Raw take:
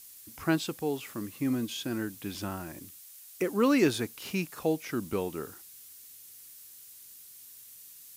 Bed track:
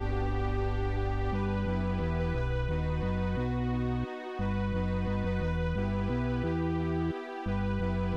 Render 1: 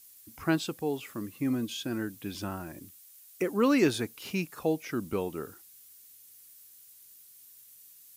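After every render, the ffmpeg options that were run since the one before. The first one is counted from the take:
-af "afftdn=nr=6:nf=-51"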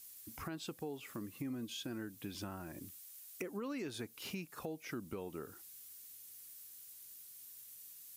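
-af "alimiter=limit=-22dB:level=0:latency=1:release=199,acompressor=threshold=-43dB:ratio=3"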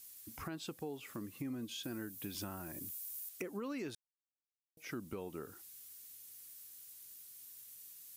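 -filter_complex "[0:a]asettb=1/sr,asplit=3[a][b][c];[a]atrim=end=1.834[d];[b]atrim=start=1.83:end=3.29,asetpts=PTS-STARTPTS,afade=t=in:d=0.004:c=qsin,afade=t=out:st=1.456:d=0.004:c=qsin,highshelf=f=8.4k:g=11.5[e];[c]atrim=start=3.286[f];[d][e]acrossfade=d=0.004:c1=hsin:c2=qsin[g];[g][f]acrossfade=d=0.004:c1=qsin:c2=hsin,asplit=3[h][i][j];[h]atrim=end=3.95,asetpts=PTS-STARTPTS,afade=t=out:st=3.946:d=0.004:c=hsin[k];[i]atrim=start=3.95:end=4.77,asetpts=PTS-STARTPTS,volume=0[l];[j]atrim=start=4.77,asetpts=PTS-STARTPTS,afade=t=in:d=0.004:c=hsin[m];[k][l][m]concat=n=3:v=0:a=1"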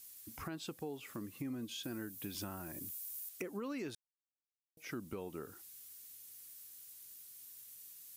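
-af anull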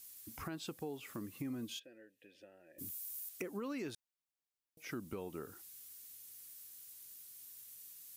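-filter_complex "[0:a]asplit=3[a][b][c];[a]afade=t=out:st=1.78:d=0.02[d];[b]asplit=3[e][f][g];[e]bandpass=f=530:t=q:w=8,volume=0dB[h];[f]bandpass=f=1.84k:t=q:w=8,volume=-6dB[i];[g]bandpass=f=2.48k:t=q:w=8,volume=-9dB[j];[h][i][j]amix=inputs=3:normalize=0,afade=t=in:st=1.78:d=0.02,afade=t=out:st=2.78:d=0.02[k];[c]afade=t=in:st=2.78:d=0.02[l];[d][k][l]amix=inputs=3:normalize=0"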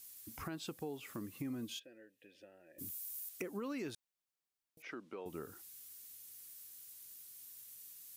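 -filter_complex "[0:a]asettb=1/sr,asplit=3[a][b][c];[a]atrim=end=4.824[d];[b]atrim=start=4.82:end=5.26,asetpts=PTS-STARTPTS,afade=t=in:d=0.004:c=qsin,afade=t=out:st=0.436:d=0.004:c=qsin,highpass=360,lowpass=3.4k[e];[c]atrim=start=5.256[f];[d][e]acrossfade=d=0.004:c1=hsin:c2=qsin[g];[g][f]acrossfade=d=0.004:c1=qsin:c2=hsin"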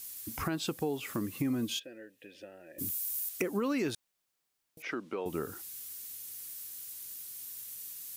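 -af "volume=10dB"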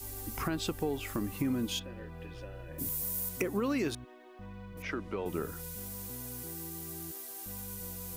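-filter_complex "[1:a]volume=-15.5dB[a];[0:a][a]amix=inputs=2:normalize=0"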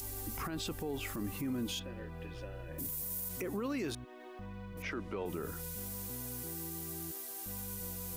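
-af "alimiter=level_in=5.5dB:limit=-24dB:level=0:latency=1:release=23,volume=-5.5dB,acompressor=mode=upward:threshold=-43dB:ratio=2.5"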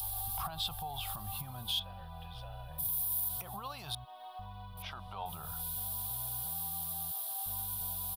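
-af "firequalizer=gain_entry='entry(140,0);entry(280,-27);entry(430,-21);entry(730,10);entry(2000,-14);entry(3400,10);entry(6700,-11);entry(10000,6)':delay=0.05:min_phase=1"

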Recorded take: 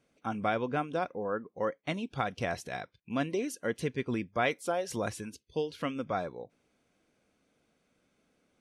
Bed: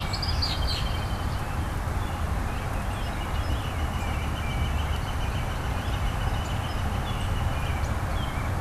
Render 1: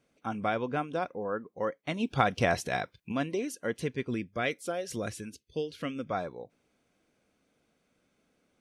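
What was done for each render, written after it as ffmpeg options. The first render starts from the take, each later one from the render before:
-filter_complex "[0:a]asplit=3[a][b][c];[a]afade=t=out:st=1.99:d=0.02[d];[b]acontrast=77,afade=t=in:st=1.99:d=0.02,afade=t=out:st=3.11:d=0.02[e];[c]afade=t=in:st=3.11:d=0.02[f];[d][e][f]amix=inputs=3:normalize=0,asettb=1/sr,asplit=3[g][h][i];[g]atrim=end=4.074[j];[h]atrim=start=4.07:end=6.11,asetpts=PTS-STARTPTS,afade=t=in:d=0.004:c=qsin,afade=t=out:st=2.036:d=0.004:c=qsin,equalizer=f=910:t=o:w=0.62:g=-11.5[k];[i]atrim=start=6.106[l];[j][k]acrossfade=d=0.004:c1=hsin:c2=qsin[m];[m][l]acrossfade=d=0.004:c1=qsin:c2=hsin"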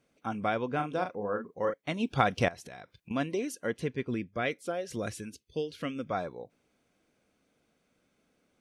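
-filter_complex "[0:a]asettb=1/sr,asplit=3[a][b][c];[a]atrim=end=0.754[d];[b]atrim=start=0.75:end=1.74,asetpts=PTS-STARTPTS,afade=t=in:d=0.004:c=qsin,afade=t=out:st=0.986:d=0.004:c=qsin,asplit=2[e][f];[f]adelay=39,volume=-6.5dB[g];[e][g]amix=inputs=2:normalize=0,atrim=end_sample=43659[h];[c]atrim=start=1.736[i];[d][h]acrossfade=d=0.004:c1=hsin:c2=qsin[j];[j][i]acrossfade=d=0.004:c1=qsin:c2=hsin,asettb=1/sr,asplit=3[k][l][m];[k]atrim=end=2.484[n];[l]atrim=start=2.48:end=3.11,asetpts=PTS-STARTPTS,afade=t=in:d=0.004:c=qsin,afade=t=out:st=0.626:d=0.004:c=qsin,acompressor=threshold=-44dB:ratio=5:attack=3.2:release=140:knee=1:detection=peak[o];[m]atrim=start=3.106[p];[n][o]acrossfade=d=0.004:c1=hsin:c2=qsin[q];[q][p]acrossfade=d=0.004:c1=qsin:c2=hsin,asettb=1/sr,asplit=3[r][s][t];[r]atrim=end=3.724[u];[s]atrim=start=3.72:end=4.99,asetpts=PTS-STARTPTS,afade=t=in:d=0.004:c=qsin,afade=t=out:st=1.266:d=0.004:c=qsin,highshelf=f=4.4k:g=-7[v];[t]atrim=start=4.986[w];[u][v]acrossfade=d=0.004:c1=hsin:c2=qsin[x];[x][w]acrossfade=d=0.004:c1=qsin:c2=hsin"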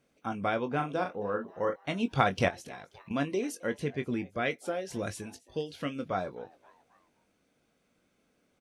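-filter_complex "[0:a]asplit=2[a][b];[b]adelay=21,volume=-9.5dB[c];[a][c]amix=inputs=2:normalize=0,asplit=4[d][e][f][g];[e]adelay=266,afreqshift=150,volume=-23.5dB[h];[f]adelay=532,afreqshift=300,volume=-29.7dB[i];[g]adelay=798,afreqshift=450,volume=-35.9dB[j];[d][h][i][j]amix=inputs=4:normalize=0"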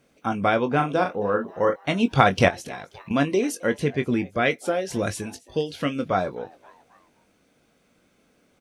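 -af "volume=9dB,alimiter=limit=-1dB:level=0:latency=1"

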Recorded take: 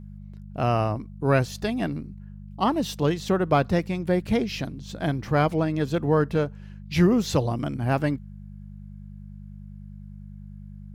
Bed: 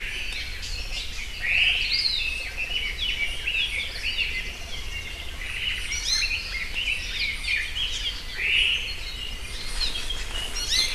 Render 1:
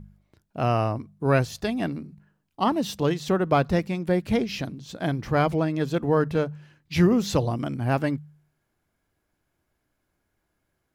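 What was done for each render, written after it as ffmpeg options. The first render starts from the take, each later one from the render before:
-af "bandreject=f=50:t=h:w=4,bandreject=f=100:t=h:w=4,bandreject=f=150:t=h:w=4,bandreject=f=200:t=h:w=4"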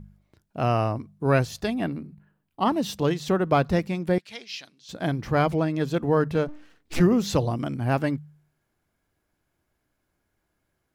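-filter_complex "[0:a]asettb=1/sr,asplit=3[a][b][c];[a]atrim=end=1.744[d];[b]atrim=start=1.74:end=2.66,asetpts=PTS-STARTPTS,afade=t=in:d=0.004:c=qsin,afade=t=out:st=0.916:d=0.004:c=qsin,equalizer=f=6k:w=1.3:g=-8.5[e];[c]atrim=start=2.656[f];[d][e]acrossfade=d=0.004:c1=hsin:c2=qsin[g];[g][f]acrossfade=d=0.004:c1=qsin:c2=hsin,asettb=1/sr,asplit=3[h][i][j];[h]atrim=end=4.184[k];[i]atrim=start=4.18:end=4.89,asetpts=PTS-STARTPTS,afade=t=in:d=0.004:c=qsin,afade=t=out:st=0.706:d=0.004:c=qsin,bandpass=f=4.3k:t=q:w=1[l];[j]atrim=start=4.886[m];[k][l]acrossfade=d=0.004:c1=hsin:c2=qsin[n];[n][m]acrossfade=d=0.004:c1=qsin:c2=hsin,asplit=3[o][p][q];[o]afade=t=out:st=6.47:d=0.02[r];[p]aeval=exprs='abs(val(0))':c=same,afade=t=in:st=6.47:d=0.02,afade=t=out:st=6.99:d=0.02[s];[q]afade=t=in:st=6.99:d=0.02[t];[r][s][t]amix=inputs=3:normalize=0"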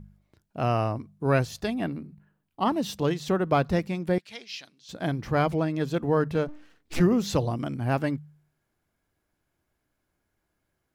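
-af "volume=-2dB"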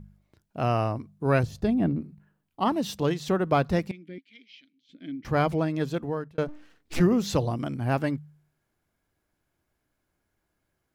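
-filter_complex "[0:a]asettb=1/sr,asplit=3[a][b][c];[a]atrim=end=1.434[d];[b]atrim=start=1.43:end=2.01,asetpts=PTS-STARTPTS,afade=t=in:d=0.004:c=qsin,afade=t=out:st=0.576:d=0.004:c=qsin,tiltshelf=f=630:g=8.5[e];[c]atrim=start=2.006[f];[d][e]acrossfade=d=0.004:c1=hsin:c2=qsin[g];[g][f]acrossfade=d=0.004:c1=qsin:c2=hsin,asettb=1/sr,asplit=3[h][i][j];[h]atrim=end=3.914[k];[i]atrim=start=3.91:end=5.25,asetpts=PTS-STARTPTS,afade=t=in:d=0.004:c=qsin,afade=t=out:st=1.336:d=0.004:c=qsin,asplit=3[l][m][n];[l]bandpass=f=270:t=q:w=8,volume=0dB[o];[m]bandpass=f=2.29k:t=q:w=8,volume=-6dB[p];[n]bandpass=f=3.01k:t=q:w=8,volume=-9dB[q];[o][p][q]amix=inputs=3:normalize=0[r];[j]atrim=start=5.246[s];[k][r]acrossfade=d=0.004:c1=hsin:c2=qsin[t];[t][s]acrossfade=d=0.004:c1=qsin:c2=hsin,asplit=2[u][v];[u]atrim=end=6.38,asetpts=PTS-STARTPTS,afade=t=out:st=5.83:d=0.55[w];[v]atrim=start=6.38,asetpts=PTS-STARTPTS,afade=t=in:d=0.004:c=hsin[x];[w][x]concat=n=2:v=0:a=1"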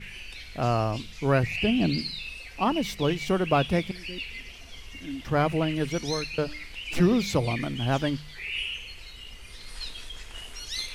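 -filter_complex "[1:a]volume=-10.5dB[a];[0:a][a]amix=inputs=2:normalize=0"

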